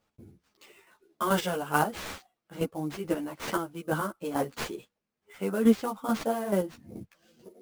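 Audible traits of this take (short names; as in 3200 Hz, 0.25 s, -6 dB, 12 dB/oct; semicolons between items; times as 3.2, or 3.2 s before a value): aliases and images of a low sample rate 11000 Hz, jitter 20%; chopped level 2.3 Hz, depth 60%, duty 20%; a shimmering, thickened sound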